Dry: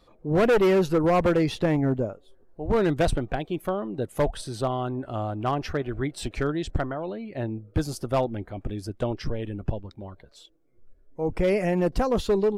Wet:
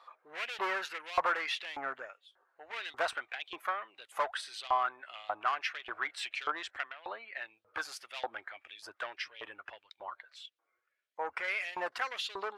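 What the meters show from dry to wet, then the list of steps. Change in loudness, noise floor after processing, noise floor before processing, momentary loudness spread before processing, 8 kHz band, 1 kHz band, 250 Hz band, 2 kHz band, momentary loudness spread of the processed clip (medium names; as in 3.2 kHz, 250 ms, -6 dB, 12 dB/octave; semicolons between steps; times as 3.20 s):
-10.5 dB, -82 dBFS, -58 dBFS, 12 LU, -8.0 dB, -4.0 dB, -29.5 dB, +0.5 dB, 15 LU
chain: overdrive pedal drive 13 dB, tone 1.3 kHz, clips at -15.5 dBFS; LFO high-pass saw up 1.7 Hz 950–3500 Hz; resonant low shelf 110 Hz +13 dB, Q 1.5; trim -1.5 dB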